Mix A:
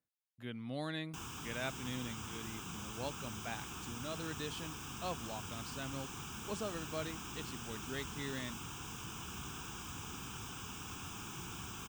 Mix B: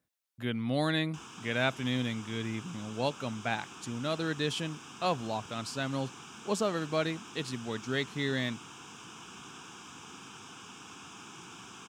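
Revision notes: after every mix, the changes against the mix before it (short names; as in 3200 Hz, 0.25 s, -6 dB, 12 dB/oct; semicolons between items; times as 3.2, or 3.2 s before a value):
speech +11.0 dB; background: add BPF 200–7200 Hz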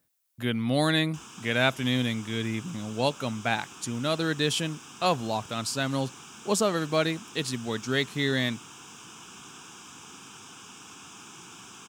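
speech +5.0 dB; master: add high shelf 7300 Hz +11 dB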